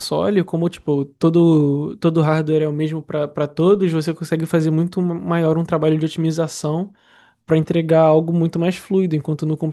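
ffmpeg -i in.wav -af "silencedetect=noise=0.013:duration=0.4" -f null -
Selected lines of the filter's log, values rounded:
silence_start: 6.88
silence_end: 7.49 | silence_duration: 0.60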